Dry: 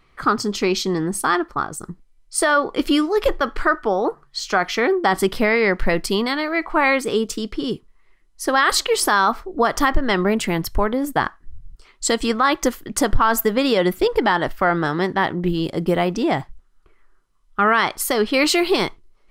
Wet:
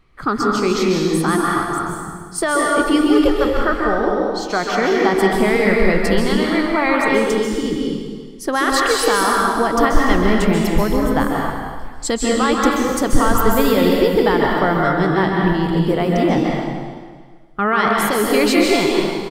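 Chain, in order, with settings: low shelf 420 Hz +6.5 dB; outdoor echo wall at 50 m, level -15 dB; plate-style reverb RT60 1.6 s, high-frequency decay 0.95×, pre-delay 0.12 s, DRR -2 dB; gain -3.5 dB

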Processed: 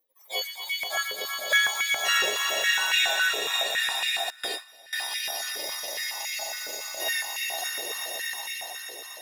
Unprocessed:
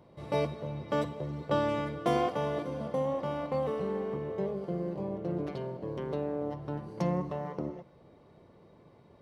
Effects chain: spectrum mirrored in octaves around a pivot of 1400 Hz; spectral noise reduction 28 dB; swelling echo 0.121 s, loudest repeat 5, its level -5.5 dB; in parallel at -10 dB: sample-and-hold 30×; 2.76–3.28 on the sum: whine 1500 Hz -35 dBFS; 4.3–4.93 gate with hold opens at -22 dBFS; stepped high-pass 7.2 Hz 460–2200 Hz; gain +2.5 dB

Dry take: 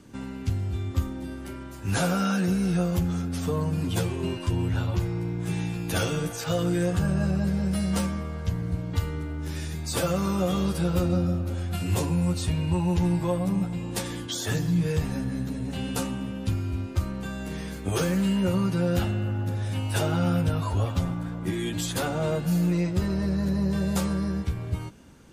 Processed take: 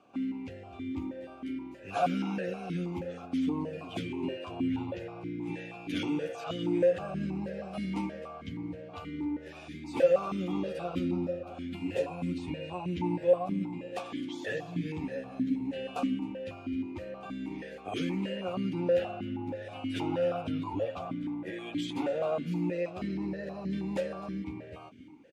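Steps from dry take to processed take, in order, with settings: echo 0.261 s -17.5 dB; vowel sequencer 6.3 Hz; gain +7.5 dB

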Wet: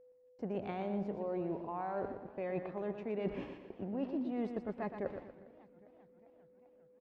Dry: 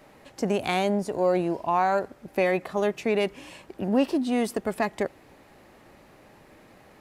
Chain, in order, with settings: gate -42 dBFS, range -36 dB; reverse; compressor 8:1, threshold -38 dBFS, peak gain reduction 20 dB; reverse; tape spacing loss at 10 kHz 42 dB; whine 500 Hz -63 dBFS; on a send: feedback echo 0.119 s, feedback 41%, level -8 dB; on the sum: warbling echo 0.399 s, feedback 67%, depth 174 cents, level -22 dB; gain +4 dB

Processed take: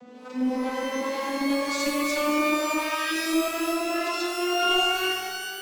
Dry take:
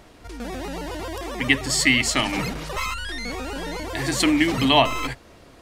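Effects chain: vocoder on a gliding note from B3, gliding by +8 st; compressor 3:1, threshold -32 dBFS, peak gain reduction 14.5 dB; hard clip -31.5 dBFS, distortion -10 dB; harmonic tremolo 2.1 Hz, depth 50%, crossover 650 Hz; shimmer reverb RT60 1.3 s, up +12 st, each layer -2 dB, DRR 0.5 dB; gain +8 dB

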